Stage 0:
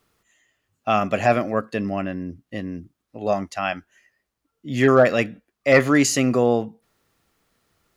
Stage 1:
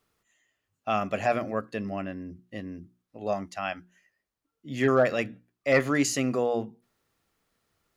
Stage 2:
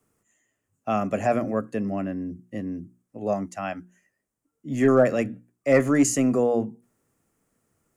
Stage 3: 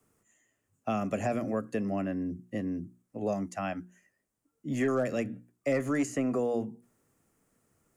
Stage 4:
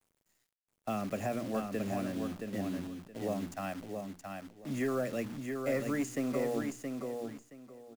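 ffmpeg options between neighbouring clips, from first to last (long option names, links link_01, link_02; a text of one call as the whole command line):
ffmpeg -i in.wav -af "bandreject=frequency=60:width_type=h:width=6,bandreject=frequency=120:width_type=h:width=6,bandreject=frequency=180:width_type=h:width=6,bandreject=frequency=240:width_type=h:width=6,bandreject=frequency=300:width_type=h:width=6,bandreject=frequency=360:width_type=h:width=6,volume=-7dB" out.wav
ffmpeg -i in.wav -filter_complex "[0:a]equalizer=frequency=125:width_type=o:width=1:gain=6,equalizer=frequency=250:width_type=o:width=1:gain=7,equalizer=frequency=500:width_type=o:width=1:gain=3,equalizer=frequency=4000:width_type=o:width=1:gain=-12,equalizer=frequency=8000:width_type=o:width=1:gain=10,acrossover=split=230|680|1900[link_01][link_02][link_03][link_04];[link_01]asoftclip=type=tanh:threshold=-27dB[link_05];[link_05][link_02][link_03][link_04]amix=inputs=4:normalize=0" out.wav
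ffmpeg -i in.wav -filter_complex "[0:a]acrossover=split=420|2500[link_01][link_02][link_03];[link_01]acompressor=threshold=-31dB:ratio=4[link_04];[link_02]acompressor=threshold=-33dB:ratio=4[link_05];[link_03]acompressor=threshold=-45dB:ratio=4[link_06];[link_04][link_05][link_06]amix=inputs=3:normalize=0" out.wav
ffmpeg -i in.wav -filter_complex "[0:a]acrusher=bits=8:dc=4:mix=0:aa=0.000001,asplit=2[link_01][link_02];[link_02]aecho=0:1:672|1344|2016:0.562|0.118|0.0248[link_03];[link_01][link_03]amix=inputs=2:normalize=0,volume=-4.5dB" out.wav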